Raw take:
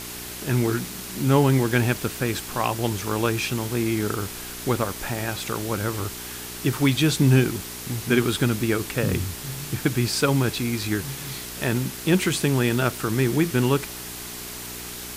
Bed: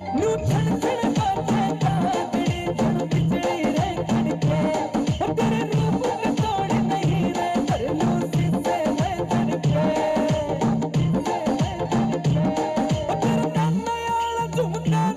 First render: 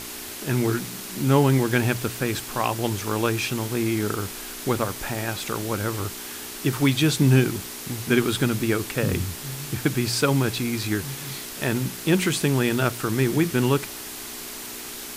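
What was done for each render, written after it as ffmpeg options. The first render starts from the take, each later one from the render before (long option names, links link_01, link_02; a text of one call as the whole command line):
ffmpeg -i in.wav -af "bandreject=frequency=60:width_type=h:width=4,bandreject=frequency=120:width_type=h:width=4,bandreject=frequency=180:width_type=h:width=4" out.wav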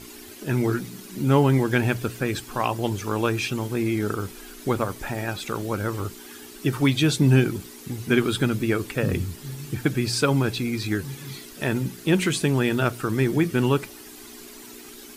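ffmpeg -i in.wav -af "afftdn=noise_reduction=11:noise_floor=-36" out.wav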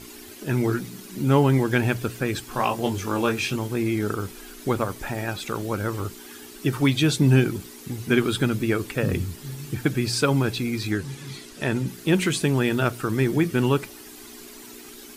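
ffmpeg -i in.wav -filter_complex "[0:a]asettb=1/sr,asplit=3[link_01][link_02][link_03];[link_01]atrim=end=2.494[link_04];[link_02]atrim=start=2.49:end=3.56,asetpts=PTS-STARTPTS,afade=type=in:duration=0.004:curve=qsin,afade=type=out:start_time=1.066:duration=0.004:curve=qsin,asplit=2[link_05][link_06];[link_06]adelay=22,volume=-5dB[link_07];[link_05][link_07]amix=inputs=2:normalize=0,atrim=end_sample=47187[link_08];[link_03]atrim=start=3.556[link_09];[link_04][link_08]acrossfade=duration=0.004:curve1=hsin:curve2=qsin[link_10];[link_10][link_09]acrossfade=duration=0.004:curve1=qsin:curve2=hsin,asettb=1/sr,asplit=3[link_11][link_12][link_13];[link_11]atrim=end=10.914[link_14];[link_12]atrim=start=10.91:end=11.88,asetpts=PTS-STARTPTS,afade=type=in:duration=0.004:curve=qsin,afade=type=out:start_time=0.966:duration=0.004:curve=qsin,lowpass=10000[link_15];[link_13]atrim=start=11.876[link_16];[link_14][link_15]acrossfade=duration=0.004:curve1=hsin:curve2=qsin[link_17];[link_17][link_16]acrossfade=duration=0.004:curve1=qsin:curve2=hsin" out.wav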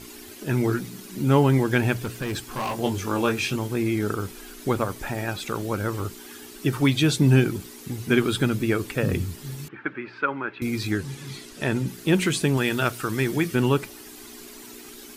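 ffmpeg -i in.wav -filter_complex "[0:a]asettb=1/sr,asplit=3[link_01][link_02][link_03];[link_01]atrim=end=2.044[link_04];[link_02]atrim=start=2.04:end=2.77,asetpts=PTS-STARTPTS,afade=type=in:duration=0.004:curve=qsin,afade=type=out:start_time=0.726:duration=0.004:curve=qsin,asoftclip=type=hard:threshold=-24.5dB[link_05];[link_03]atrim=start=2.766[link_06];[link_04][link_05]acrossfade=duration=0.004:curve1=hsin:curve2=qsin[link_07];[link_07][link_06]acrossfade=duration=0.004:curve1=qsin:curve2=hsin,asettb=1/sr,asplit=3[link_08][link_09][link_10];[link_08]atrim=end=9.684[link_11];[link_09]atrim=start=9.68:end=10.62,asetpts=PTS-STARTPTS,afade=type=in:duration=0.004:curve=qsin,afade=type=out:start_time=0.936:duration=0.004:curve=qsin,highpass=460,equalizer=frequency=470:width_type=q:width=4:gain=-7,equalizer=frequency=700:width_type=q:width=4:gain=-9,equalizer=frequency=1400:width_type=q:width=4:gain=4,lowpass=frequency=2200:width=0.5412,lowpass=frequency=2200:width=1.3066[link_12];[link_10]atrim=start=10.616[link_13];[link_11][link_12]acrossfade=duration=0.004:curve1=hsin:curve2=qsin[link_14];[link_14][link_13]acrossfade=duration=0.004:curve1=qsin:curve2=hsin,asettb=1/sr,asplit=3[link_15][link_16][link_17];[link_15]atrim=end=12.574[link_18];[link_16]atrim=start=12.57:end=13.55,asetpts=PTS-STARTPTS,afade=type=in:duration=0.004:curve=qsin,afade=type=out:start_time=0.976:duration=0.004:curve=qsin,tiltshelf=frequency=970:gain=-3.5[link_19];[link_17]atrim=start=13.546[link_20];[link_18][link_19]acrossfade=duration=0.004:curve1=hsin:curve2=qsin[link_21];[link_21][link_20]acrossfade=duration=0.004:curve1=qsin:curve2=hsin" out.wav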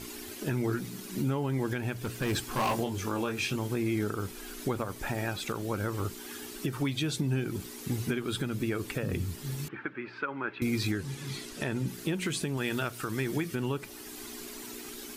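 ffmpeg -i in.wav -af "acompressor=threshold=-22dB:ratio=6,alimiter=limit=-20.5dB:level=0:latency=1:release=482" out.wav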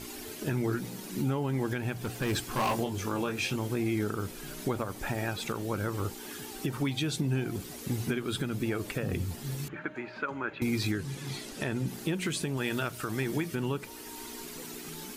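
ffmpeg -i in.wav -i bed.wav -filter_complex "[1:a]volume=-29dB[link_01];[0:a][link_01]amix=inputs=2:normalize=0" out.wav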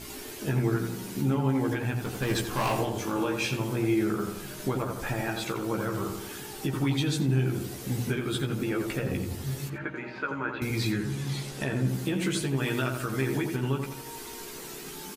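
ffmpeg -i in.wav -filter_complex "[0:a]asplit=2[link_01][link_02];[link_02]adelay=15,volume=-4dB[link_03];[link_01][link_03]amix=inputs=2:normalize=0,asplit=2[link_04][link_05];[link_05]adelay=86,lowpass=frequency=1700:poles=1,volume=-4.5dB,asplit=2[link_06][link_07];[link_07]adelay=86,lowpass=frequency=1700:poles=1,volume=0.53,asplit=2[link_08][link_09];[link_09]adelay=86,lowpass=frequency=1700:poles=1,volume=0.53,asplit=2[link_10][link_11];[link_11]adelay=86,lowpass=frequency=1700:poles=1,volume=0.53,asplit=2[link_12][link_13];[link_13]adelay=86,lowpass=frequency=1700:poles=1,volume=0.53,asplit=2[link_14][link_15];[link_15]adelay=86,lowpass=frequency=1700:poles=1,volume=0.53,asplit=2[link_16][link_17];[link_17]adelay=86,lowpass=frequency=1700:poles=1,volume=0.53[link_18];[link_06][link_08][link_10][link_12][link_14][link_16][link_18]amix=inputs=7:normalize=0[link_19];[link_04][link_19]amix=inputs=2:normalize=0" out.wav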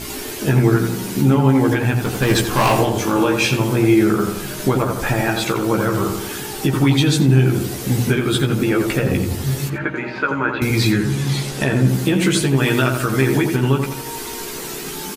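ffmpeg -i in.wav -af "volume=12dB" out.wav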